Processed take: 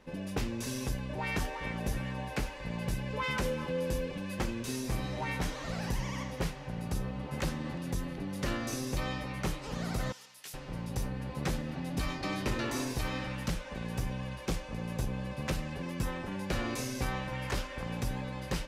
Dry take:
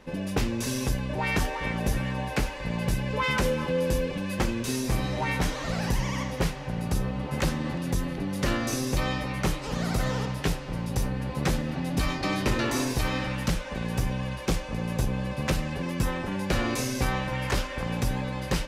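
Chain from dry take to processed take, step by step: 10.12–10.54 s: differentiator; trim -7 dB

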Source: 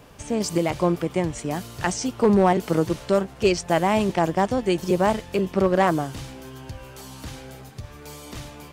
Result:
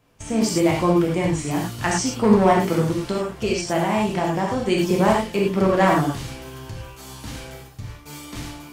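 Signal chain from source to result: gate -40 dBFS, range -15 dB; peaking EQ 540 Hz -3.5 dB 0.63 oct; 2.75–4.68 s: compression, threshold -21 dBFS, peak gain reduction 6.5 dB; gated-style reverb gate 130 ms flat, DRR -2.5 dB

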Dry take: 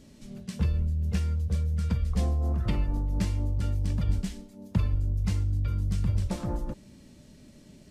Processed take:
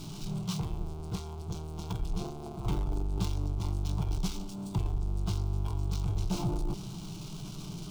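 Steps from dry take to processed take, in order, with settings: power-law waveshaper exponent 0.5; formant shift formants -6 st; static phaser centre 360 Hz, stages 8; trim -3.5 dB

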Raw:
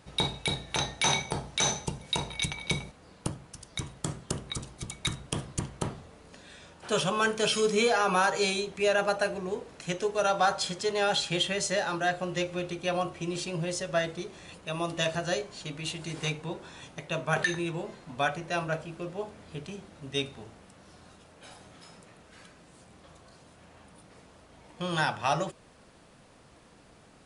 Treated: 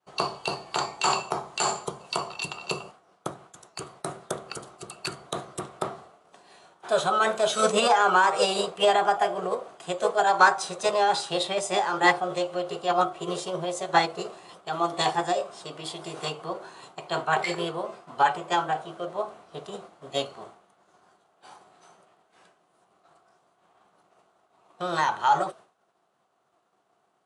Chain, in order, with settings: expander -45 dBFS; cabinet simulation 200–8400 Hz, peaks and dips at 260 Hz -6 dB, 380 Hz +9 dB, 710 Hz +10 dB, 1.1 kHz +8 dB, 1.7 kHz -5 dB, 4.4 kHz -5 dB; formant shift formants +3 st

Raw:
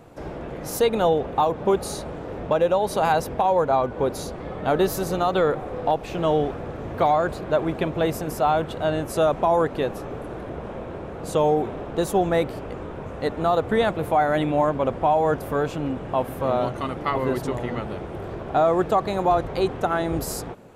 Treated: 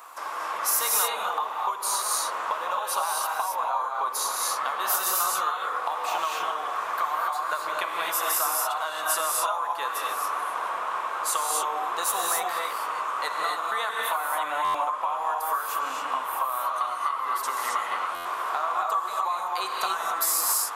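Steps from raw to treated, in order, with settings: resonant high-pass 1.1 kHz, resonance Q 7; treble shelf 8.1 kHz +10.5 dB; compression 10:1, threshold -28 dBFS, peak gain reduction 21 dB; treble shelf 3.2 kHz +8 dB; gated-style reverb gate 300 ms rising, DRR -1.5 dB; buffer glitch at 14.64/18.15 s, samples 512, times 8

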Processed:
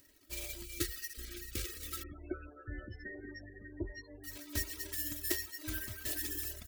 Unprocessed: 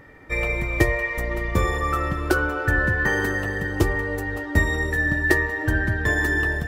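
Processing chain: median filter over 41 samples; peaking EQ 1 kHz -9.5 dB 2.2 oct; delay 164 ms -16.5 dB; 0.64–2.13 s: time-frequency box 570–1200 Hz -28 dB; reverb removal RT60 0.97 s; 2.03–4.24 s: loudest bins only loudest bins 32; pre-emphasis filter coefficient 0.97; comb 3.1 ms, depth 87%; trim +7.5 dB

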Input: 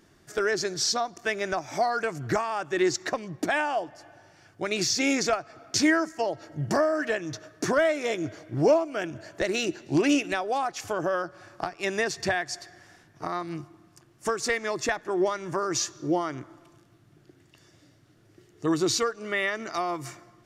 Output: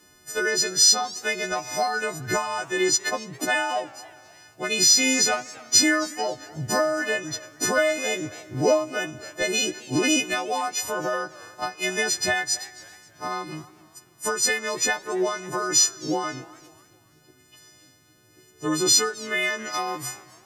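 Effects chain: partials quantised in pitch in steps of 3 st; modulated delay 272 ms, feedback 38%, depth 157 cents, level -22 dB

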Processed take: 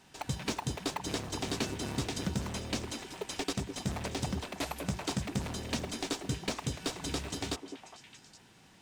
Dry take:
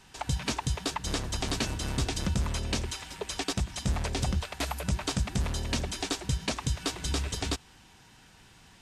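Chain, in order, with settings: high-pass 120 Hz 12 dB/octave; in parallel at -7 dB: sample-rate reducer 1.7 kHz, jitter 0%; on the sum: repeats whose band climbs or falls 205 ms, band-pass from 340 Hz, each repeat 1.4 oct, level -5 dB; trim -4.5 dB

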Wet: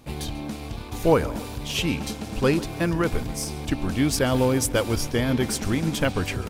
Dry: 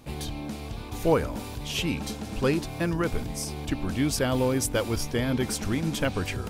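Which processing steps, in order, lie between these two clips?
in parallel at -5 dB: crossover distortion -38.5 dBFS; on the sum: feedback delay 140 ms, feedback 55%, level -19.5 dB

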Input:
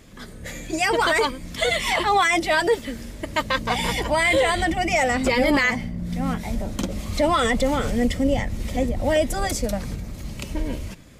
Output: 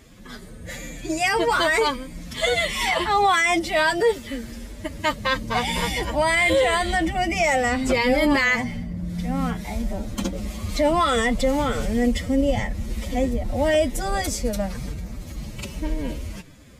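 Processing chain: time stretch by phase-locked vocoder 1.5×

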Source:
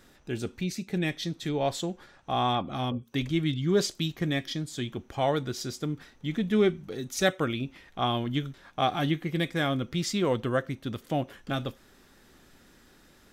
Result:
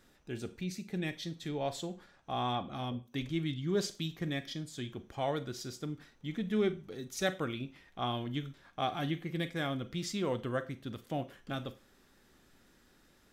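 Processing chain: Schroeder reverb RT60 0.33 s, combs from 33 ms, DRR 14 dB; trim -7.5 dB

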